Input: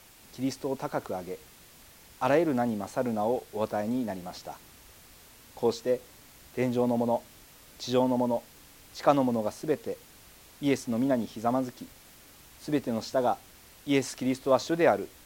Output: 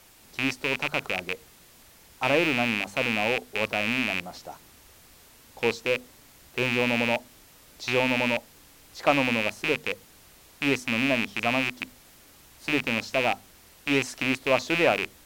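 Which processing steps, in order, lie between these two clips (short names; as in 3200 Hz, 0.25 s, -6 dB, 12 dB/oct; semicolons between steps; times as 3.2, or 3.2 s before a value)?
rattling part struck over -39 dBFS, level -14 dBFS; notches 50/100/150/200/250 Hz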